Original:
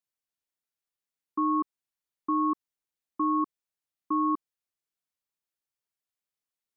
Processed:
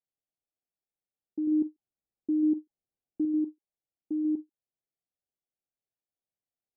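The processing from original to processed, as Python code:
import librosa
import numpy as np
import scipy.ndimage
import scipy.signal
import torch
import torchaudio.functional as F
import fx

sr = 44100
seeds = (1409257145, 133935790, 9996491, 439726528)

y = fx.low_shelf(x, sr, hz=450.0, db=5.0, at=(1.47, 3.25))
y = scipy.signal.sosfilt(scipy.signal.cheby1(10, 1.0, 830.0, 'lowpass', fs=sr, output='sos'), y)
y = y + 10.0 ** (-8.5 / 20.0) * np.pad(y, (int(140 * sr / 1000.0), 0))[:len(y)]
y = fx.end_taper(y, sr, db_per_s=490.0)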